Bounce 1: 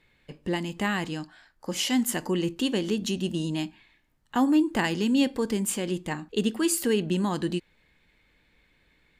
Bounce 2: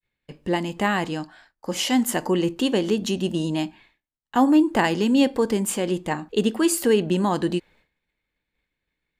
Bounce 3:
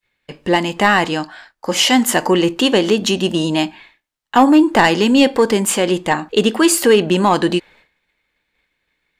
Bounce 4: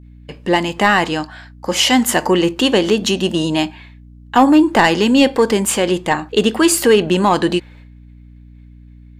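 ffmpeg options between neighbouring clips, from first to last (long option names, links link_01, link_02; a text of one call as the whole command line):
ffmpeg -i in.wav -af "agate=range=-33dB:threshold=-52dB:ratio=3:detection=peak,adynamicequalizer=threshold=0.01:dfrequency=680:dqfactor=0.71:tfrequency=680:tqfactor=0.71:attack=5:release=100:ratio=0.375:range=3.5:mode=boostabove:tftype=bell,volume=2dB" out.wav
ffmpeg -i in.wav -filter_complex "[0:a]asplit=2[link_01][link_02];[link_02]highpass=frequency=720:poles=1,volume=8dB,asoftclip=type=tanh:threshold=-6.5dB[link_03];[link_01][link_03]amix=inputs=2:normalize=0,lowpass=frequency=5800:poles=1,volume=-6dB,acontrast=77,volume=2dB" out.wav
ffmpeg -i in.wav -af "aeval=exprs='val(0)+0.0112*(sin(2*PI*60*n/s)+sin(2*PI*2*60*n/s)/2+sin(2*PI*3*60*n/s)/3+sin(2*PI*4*60*n/s)/4+sin(2*PI*5*60*n/s)/5)':channel_layout=same" out.wav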